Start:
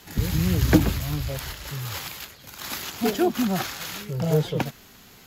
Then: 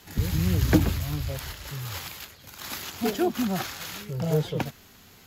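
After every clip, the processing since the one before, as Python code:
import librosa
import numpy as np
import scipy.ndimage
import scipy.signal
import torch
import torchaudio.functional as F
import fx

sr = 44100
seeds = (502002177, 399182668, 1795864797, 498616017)

y = fx.peak_eq(x, sr, hz=87.0, db=7.5, octaves=0.25)
y = y * librosa.db_to_amplitude(-3.0)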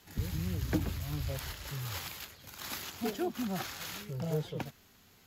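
y = fx.rider(x, sr, range_db=4, speed_s=0.5)
y = y * librosa.db_to_amplitude(-8.0)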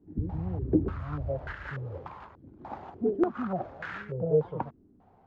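y = fx.filter_held_lowpass(x, sr, hz=3.4, low_hz=310.0, high_hz=1600.0)
y = y * librosa.db_to_amplitude(1.5)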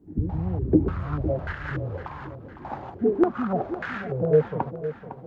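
y = fx.echo_feedback(x, sr, ms=507, feedback_pct=48, wet_db=-12.0)
y = y * librosa.db_to_amplitude(5.5)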